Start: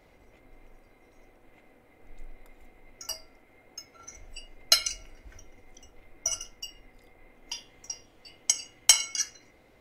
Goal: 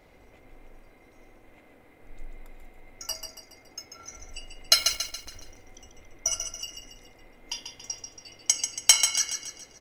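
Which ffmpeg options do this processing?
ffmpeg -i in.wav -filter_complex "[0:a]asplit=2[link_01][link_02];[link_02]asoftclip=type=tanh:threshold=-16.5dB,volume=-10dB[link_03];[link_01][link_03]amix=inputs=2:normalize=0,asettb=1/sr,asplit=3[link_04][link_05][link_06];[link_04]atrim=end=4.754[link_07];[link_05]atrim=start=4.75:end=5.34,asetpts=PTS-STARTPTS,afade=type=in:duration=0.004:curve=qsin,afade=type=out:start_time=0.586:duration=0.004:curve=qsin,acrusher=bits=7:dc=4:mix=0:aa=0.000001[link_08];[link_06]atrim=start=5.336[link_09];[link_07][link_08]acrossfade=duration=0.004:curve1=hsin:curve2=qsin[link_10];[link_10][link_09]acrossfade=duration=0.004:curve1=qsin:curve2=hsin,aecho=1:1:140|280|420|560|700:0.447|0.201|0.0905|0.0407|0.0183" out.wav

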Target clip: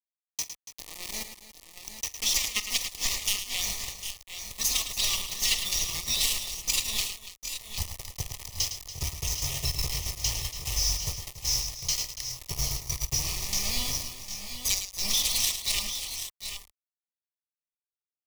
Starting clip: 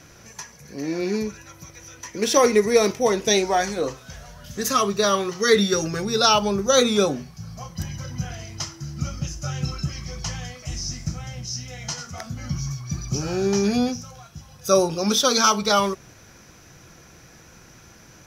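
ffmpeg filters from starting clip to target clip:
ffmpeg -i in.wav -filter_complex "[0:a]aeval=exprs='0.596*(cos(1*acos(clip(val(0)/0.596,-1,1)))-cos(1*PI/2))+0.266*(cos(3*acos(clip(val(0)/0.596,-1,1)))-cos(3*PI/2))':channel_layout=same,firequalizer=gain_entry='entry(120,0);entry(290,-5);entry(490,-24);entry(700,-10);entry(2800,15)':delay=0.05:min_phase=1,acompressor=threshold=-23dB:ratio=6,acrusher=bits=4:mix=0:aa=0.000001,asubboost=boost=9.5:cutoff=66,asoftclip=type=tanh:threshold=-12.5dB,asuperstop=centerf=1500:order=8:qfactor=2.8,asplit=2[link_01][link_02];[link_02]aecho=0:1:46|108|284|753|777:0.141|0.335|0.2|0.237|0.299[link_03];[link_01][link_03]amix=inputs=2:normalize=0" out.wav

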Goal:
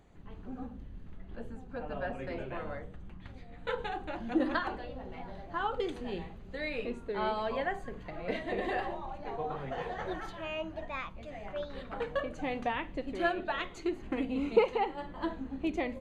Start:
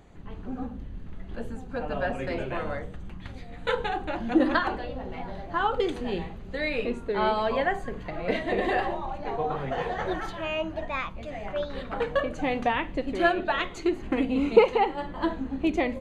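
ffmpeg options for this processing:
ffmpeg -i in.wav -filter_complex "[0:a]asettb=1/sr,asplit=3[link_01][link_02][link_03];[link_01]atrim=end=1.164[link_04];[link_02]atrim=start=1.16:end=3.79,asetpts=PTS-STARTPTS,afade=type=in:duration=0.004:curve=qsin,afade=type=out:start_time=2.626:duration=0.004:curve=qsin,highshelf=frequency=4400:gain=-7[link_05];[link_03]atrim=start=3.786[link_06];[link_04][link_05]acrossfade=duration=0.004:curve1=hsin:curve2=qsin[link_07];[link_07][link_06]acrossfade=duration=0.004:curve1=qsin:curve2=hsin,volume=-7.5dB" out.wav

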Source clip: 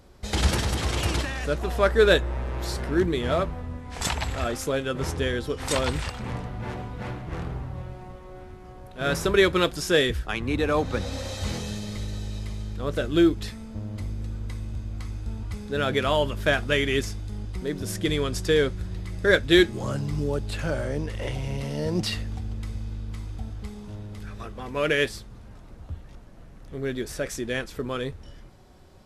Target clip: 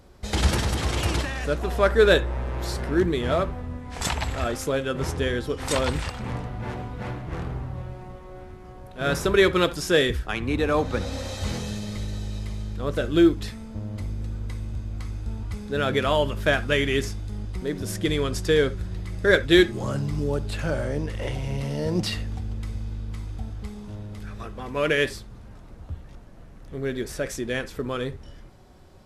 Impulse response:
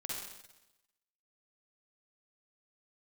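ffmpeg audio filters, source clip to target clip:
-filter_complex "[0:a]asplit=2[link_01][link_02];[1:a]atrim=start_sample=2205,atrim=end_sample=3969,lowpass=2700[link_03];[link_02][link_03]afir=irnorm=-1:irlink=0,volume=-12dB[link_04];[link_01][link_04]amix=inputs=2:normalize=0"

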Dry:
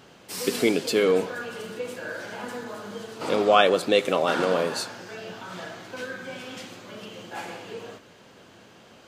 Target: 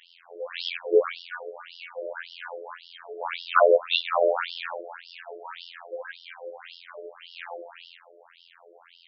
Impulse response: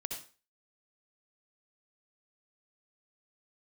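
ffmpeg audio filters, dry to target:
-filter_complex "[0:a]asplit=2[link_01][link_02];[1:a]atrim=start_sample=2205,adelay=49[link_03];[link_02][link_03]afir=irnorm=-1:irlink=0,volume=-19.5dB[link_04];[link_01][link_04]amix=inputs=2:normalize=0,afftfilt=real='hypot(re,im)*cos(PI*b)':imag='0':win_size=2048:overlap=0.75,afftfilt=real='re*between(b*sr/1024,470*pow(4000/470,0.5+0.5*sin(2*PI*1.8*pts/sr))/1.41,470*pow(4000/470,0.5+0.5*sin(2*PI*1.8*pts/sr))*1.41)':imag='im*between(b*sr/1024,470*pow(4000/470,0.5+0.5*sin(2*PI*1.8*pts/sr))/1.41,470*pow(4000/470,0.5+0.5*sin(2*PI*1.8*pts/sr))*1.41)':win_size=1024:overlap=0.75,volume=7.5dB"

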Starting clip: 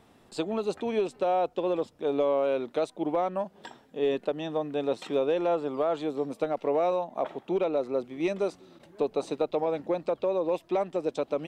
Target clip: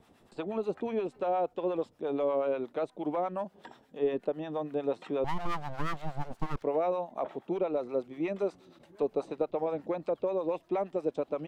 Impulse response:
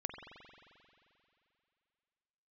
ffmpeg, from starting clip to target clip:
-filter_complex "[0:a]acrossover=split=2500[link_01][link_02];[link_02]acompressor=threshold=-58dB:ratio=4:attack=1:release=60[link_03];[link_01][link_03]amix=inputs=2:normalize=0,asettb=1/sr,asplit=3[link_04][link_05][link_06];[link_04]atrim=end=5.244[link_07];[link_05]atrim=start=5.24:end=6.63,asetpts=PTS-STARTPTS,afade=type=in:duration=0.004:curve=qsin,afade=type=out:start_time=1.386:duration=0.004:curve=qsin,aeval=exprs='abs(val(0))':channel_layout=same[link_08];[link_06]atrim=start=6.626[link_09];[link_07][link_08]acrossfade=duration=0.004:curve1=hsin:curve2=qsin[link_10];[link_10][link_09]acrossfade=duration=0.004:curve1=qsin:curve2=hsin,acrossover=split=700[link_11][link_12];[link_11]aeval=exprs='val(0)*(1-0.7/2+0.7/2*cos(2*PI*8.4*n/s))':channel_layout=same[link_13];[link_12]aeval=exprs='val(0)*(1-0.7/2-0.7/2*cos(2*PI*8.4*n/s))':channel_layout=same[link_14];[link_13][link_14]amix=inputs=2:normalize=0"

